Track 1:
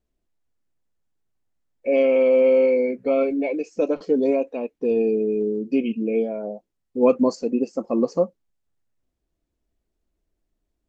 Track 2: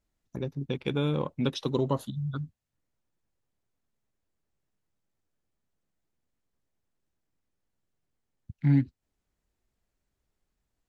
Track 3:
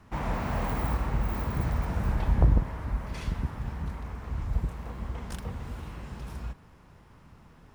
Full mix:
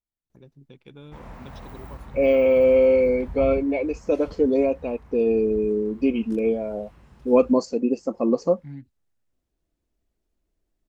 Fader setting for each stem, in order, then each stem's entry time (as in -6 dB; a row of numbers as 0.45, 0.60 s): 0.0, -16.5, -11.5 dB; 0.30, 0.00, 1.00 s